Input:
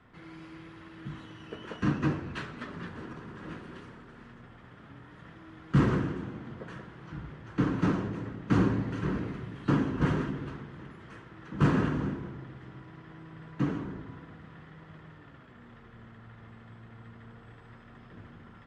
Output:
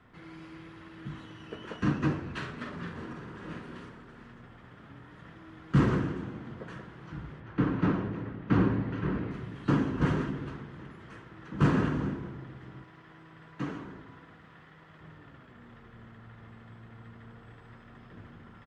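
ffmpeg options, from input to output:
ffmpeg -i in.wav -filter_complex "[0:a]asplit=3[link_01][link_02][link_03];[link_01]afade=type=out:start_time=2.41:duration=0.02[link_04];[link_02]asplit=2[link_05][link_06];[link_06]adelay=46,volume=-5.5dB[link_07];[link_05][link_07]amix=inputs=2:normalize=0,afade=type=in:start_time=2.41:duration=0.02,afade=type=out:start_time=3.88:duration=0.02[link_08];[link_03]afade=type=in:start_time=3.88:duration=0.02[link_09];[link_04][link_08][link_09]amix=inputs=3:normalize=0,asettb=1/sr,asplit=3[link_10][link_11][link_12];[link_10]atrim=end=7.404[link_13];[link_11]atrim=start=7.4:end=9.31,asetpts=PTS-STARTPTS,afade=type=in:duration=0.004:curve=qsin,afade=type=out:start_time=1.906:duration=0.004:curve=qsin,lowpass=3300[link_14];[link_12]atrim=start=9.306[link_15];[link_13][link_14]acrossfade=duration=0.004:curve1=hsin:curve2=qsin[link_16];[link_16][link_15]acrossfade=duration=0.004:curve1=qsin:curve2=hsin,asettb=1/sr,asplit=3[link_17][link_18][link_19];[link_17]atrim=end=12.844[link_20];[link_18]atrim=start=12.84:end=15.01,asetpts=PTS-STARTPTS,afade=type=in:duration=0.004:curve=qsin,afade=type=out:start_time=2.166:duration=0.004:curve=qsin,lowshelf=frequency=420:gain=-8.5[link_21];[link_19]atrim=start=15.006[link_22];[link_20][link_21]acrossfade=duration=0.004:curve1=hsin:curve2=qsin[link_23];[link_23][link_22]acrossfade=duration=0.004:curve1=qsin:curve2=hsin" out.wav

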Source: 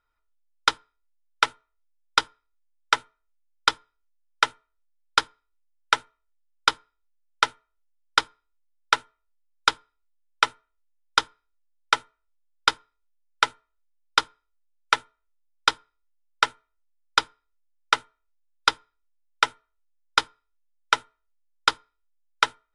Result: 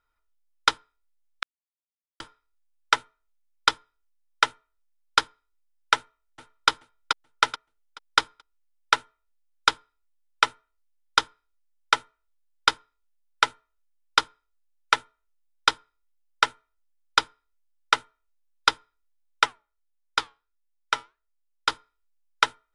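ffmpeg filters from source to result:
ffmpeg -i in.wav -filter_complex "[0:a]asplit=2[link_01][link_02];[link_02]afade=type=in:start_time=5.95:duration=0.01,afade=type=out:start_time=6.69:duration=0.01,aecho=0:1:430|860|1290|1720:0.562341|0.168702|0.0506107|0.0151832[link_03];[link_01][link_03]amix=inputs=2:normalize=0,asplit=3[link_04][link_05][link_06];[link_04]afade=type=out:start_time=19.45:duration=0.02[link_07];[link_05]flanger=delay=3.9:depth=3.9:regen=-82:speed=1.5:shape=sinusoidal,afade=type=in:start_time=19.45:duration=0.02,afade=type=out:start_time=21.68:duration=0.02[link_08];[link_06]afade=type=in:start_time=21.68:duration=0.02[link_09];[link_07][link_08][link_09]amix=inputs=3:normalize=0,asplit=3[link_10][link_11][link_12];[link_10]atrim=end=1.43,asetpts=PTS-STARTPTS,afade=type=out:start_time=1.426:duration=0.004:curve=hsin[link_13];[link_11]atrim=start=1.43:end=2.2,asetpts=PTS-STARTPTS,volume=0[link_14];[link_12]atrim=start=2.2,asetpts=PTS-STARTPTS,afade=type=in:duration=0.004:curve=hsin[link_15];[link_13][link_14][link_15]concat=n=3:v=0:a=1" out.wav

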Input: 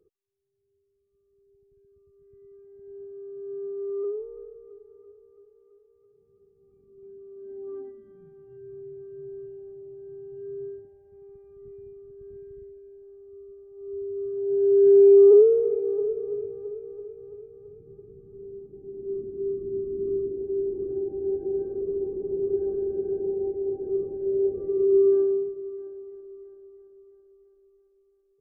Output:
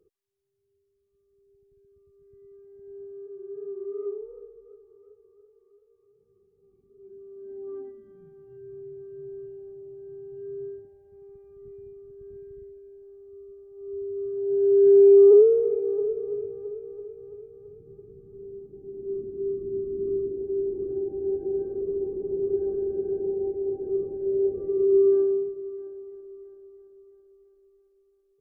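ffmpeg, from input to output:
ffmpeg -i in.wav -filter_complex "[0:a]asplit=3[link_01][link_02][link_03];[link_01]afade=type=out:start_time=3.25:duration=0.02[link_04];[link_02]flanger=delay=17.5:depth=7.4:speed=2.7,afade=type=in:start_time=3.25:duration=0.02,afade=type=out:start_time=7.11:duration=0.02[link_05];[link_03]afade=type=in:start_time=7.11:duration=0.02[link_06];[link_04][link_05][link_06]amix=inputs=3:normalize=0" out.wav

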